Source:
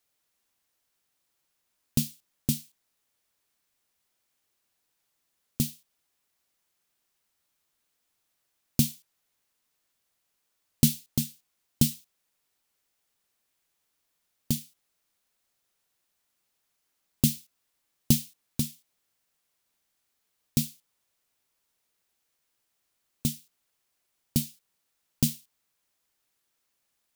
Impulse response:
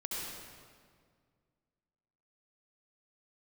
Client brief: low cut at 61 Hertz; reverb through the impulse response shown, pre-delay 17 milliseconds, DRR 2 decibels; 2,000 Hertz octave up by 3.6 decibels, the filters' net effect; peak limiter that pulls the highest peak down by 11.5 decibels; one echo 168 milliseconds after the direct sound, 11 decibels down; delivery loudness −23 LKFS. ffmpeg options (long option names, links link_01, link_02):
-filter_complex "[0:a]highpass=61,equalizer=frequency=2000:width_type=o:gain=5,alimiter=limit=-15.5dB:level=0:latency=1,aecho=1:1:168:0.282,asplit=2[link_01][link_02];[1:a]atrim=start_sample=2205,adelay=17[link_03];[link_02][link_03]afir=irnorm=-1:irlink=0,volume=-4.5dB[link_04];[link_01][link_04]amix=inputs=2:normalize=0,volume=10.5dB"